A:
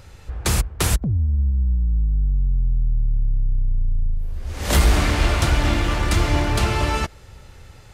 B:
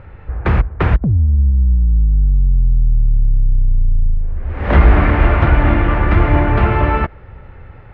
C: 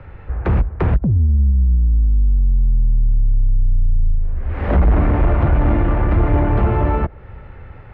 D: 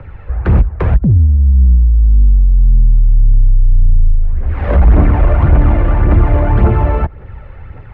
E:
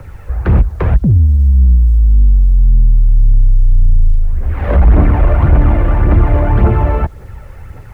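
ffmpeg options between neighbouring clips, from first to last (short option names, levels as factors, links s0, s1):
-af "lowpass=f=2100:w=0.5412,lowpass=f=2100:w=1.3066,volume=2.24"
-filter_complex "[0:a]acrossover=split=110|360|960[s0][s1][s2][s3];[s3]acompressor=threshold=0.0224:ratio=5[s4];[s0][s1][s2][s4]amix=inputs=4:normalize=0,asoftclip=type=tanh:threshold=0.422"
-af "aphaser=in_gain=1:out_gain=1:delay=2:decay=0.42:speed=1.8:type=triangular,volume=1.26"
-af "acrusher=bits=8:mix=0:aa=0.000001"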